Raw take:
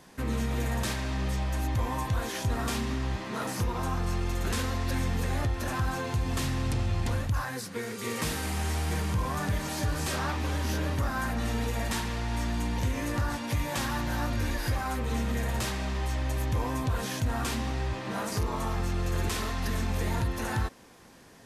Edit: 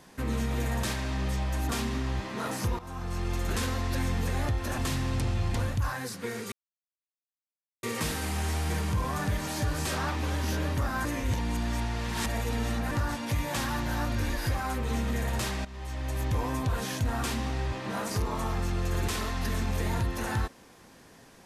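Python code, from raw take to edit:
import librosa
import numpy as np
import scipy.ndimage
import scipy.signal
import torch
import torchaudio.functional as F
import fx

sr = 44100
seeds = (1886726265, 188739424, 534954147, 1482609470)

y = fx.edit(x, sr, fx.cut(start_s=1.69, length_s=0.96),
    fx.fade_in_from(start_s=3.75, length_s=0.55, floor_db=-15.5),
    fx.cut(start_s=5.74, length_s=0.56),
    fx.insert_silence(at_s=8.04, length_s=1.31),
    fx.reverse_span(start_s=11.26, length_s=1.86),
    fx.fade_in_from(start_s=15.86, length_s=0.62, floor_db=-15.5), tone=tone)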